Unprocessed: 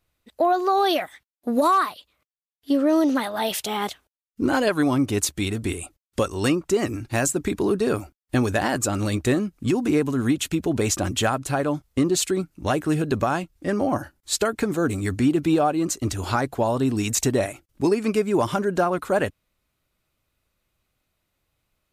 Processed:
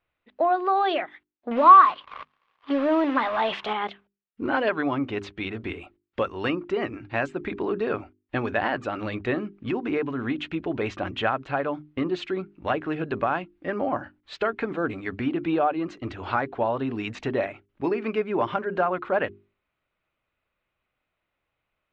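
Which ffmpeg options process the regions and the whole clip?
-filter_complex "[0:a]asettb=1/sr,asplit=3[a][b][c];[a]atrim=end=1.514[d];[b]atrim=start=1.51:end=3.73,asetpts=PTS-STARTPTS,afade=t=in:d=0.004:c=qsin,afade=t=out:st=2.216:d=0.004:c=qsin,aeval=exprs='val(0)+0.5*0.0355*sgn(val(0))':c=same,equalizer=f=1.1k:t=o:w=0.26:g=10,acrusher=bits=4:mix=0:aa=0.5[e];[c]atrim=start=3.726[f];[d][e]acrossfade=d=0.004:c1=hsin:c2=qsin[g];[g][f]acrossfade=d=0.004:c1=qsin:c2=hsin,lowpass=f=2.9k:w=0.5412,lowpass=f=2.9k:w=1.3066,lowshelf=f=300:g=-10.5,bandreject=f=50:t=h:w=6,bandreject=f=100:t=h:w=6,bandreject=f=150:t=h:w=6,bandreject=f=200:t=h:w=6,bandreject=f=250:t=h:w=6,bandreject=f=300:t=h:w=6,bandreject=f=350:t=h:w=6,bandreject=f=400:t=h:w=6"

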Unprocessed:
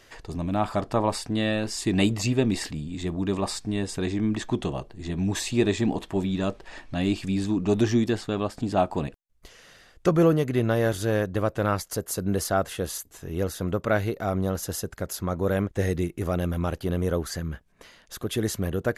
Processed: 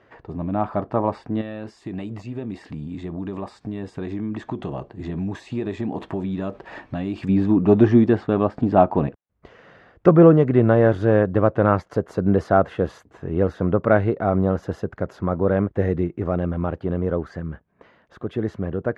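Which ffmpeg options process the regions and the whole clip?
-filter_complex "[0:a]asettb=1/sr,asplit=3[a][b][c];[a]atrim=end=1.414[d];[b]atrim=start=1.41:end=7.29,asetpts=PTS-STARTPTS,afade=t=in:d=0.004:c=qsin,afade=t=out:st=5.876:d=0.004:c=qsin,aemphasis=mode=production:type=75kf,acompressor=threshold=-30dB:ratio=5:attack=3.2:release=140:knee=1:detection=peak[e];[c]atrim=start=7.286[f];[d][e]acrossfade=d=0.004:c1=hsin:c2=qsin[g];[g][f]acrossfade=d=0.004:c1=qsin:c2=hsin,highpass=87,dynaudnorm=f=400:g=21:m=7dB,lowpass=1.4k,volume=2.5dB"

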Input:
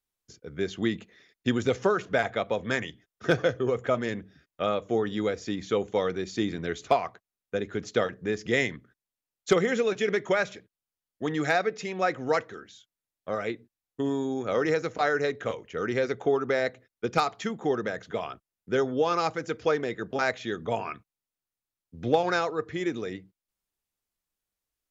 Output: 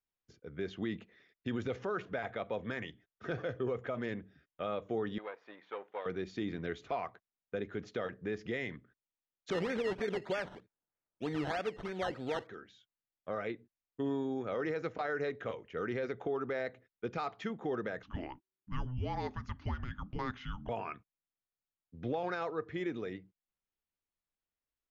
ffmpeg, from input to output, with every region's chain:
-filter_complex "[0:a]asettb=1/sr,asplit=3[a][b][c];[a]atrim=end=5.184[d];[b]atrim=start=5.18:end=6.06,asetpts=PTS-STARTPTS,afade=t=in:d=0.004:c=qsin,afade=t=out:st=0.876:d=0.004:c=qsin,aeval=exprs='if(lt(val(0),0),0.447*val(0),val(0))':c=same,highpass=740,lowpass=2.2k[e];[c]atrim=start=6.056[f];[d][e]acrossfade=d=0.004:c1=hsin:c2=qsin[g];[g][f]acrossfade=d=0.004:c1=qsin:c2=hsin,asettb=1/sr,asplit=3[h][i][j];[h]atrim=end=9.504[k];[i]atrim=start=9.5:end=12.47,asetpts=PTS-STARTPTS,afade=t=in:d=0.004:c=qsin,afade=t=out:st=2.966:d=0.004:c=qsin,acrusher=samples=15:mix=1:aa=0.000001:lfo=1:lforange=9:lforate=3.2,bandreject=f=1.1k:w=15[l];[j]atrim=start=12.466[m];[k][l]acrossfade=d=0.004:c1=hsin:c2=qsin[n];[n][m]acrossfade=d=0.004:c1=qsin:c2=hsin,asettb=1/sr,asplit=3[o][p][q];[o]atrim=end=18.034[r];[p]atrim=start=18.03:end=20.69,asetpts=PTS-STARTPTS,afade=t=in:d=0.004:c=qsin,afade=t=out:st=2.656:d=0.004:c=qsin,acompressor=threshold=-32dB:ratio=1.5:attack=3.2:release=140:knee=1:detection=peak,afreqshift=-380[s];[q]atrim=start=20.686[t];[r][s]acrossfade=d=0.004:c1=hsin:c2=qsin[u];[u][t]acrossfade=d=0.004:c1=qsin:c2=hsin,lowpass=3.3k,alimiter=limit=-20.5dB:level=0:latency=1:release=39,volume=-6dB"

